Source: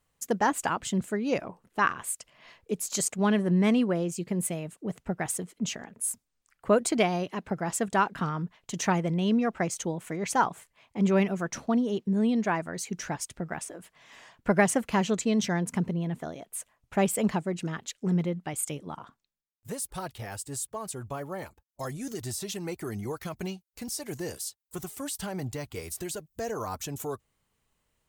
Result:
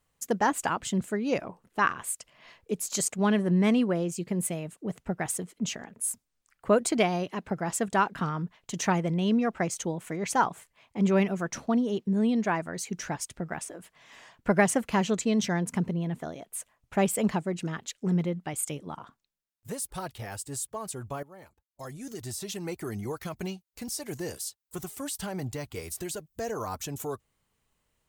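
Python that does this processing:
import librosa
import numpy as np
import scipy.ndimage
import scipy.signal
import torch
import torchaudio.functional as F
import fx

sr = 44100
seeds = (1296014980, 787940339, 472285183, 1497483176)

y = fx.edit(x, sr, fx.fade_in_from(start_s=21.23, length_s=1.46, floor_db=-16.0), tone=tone)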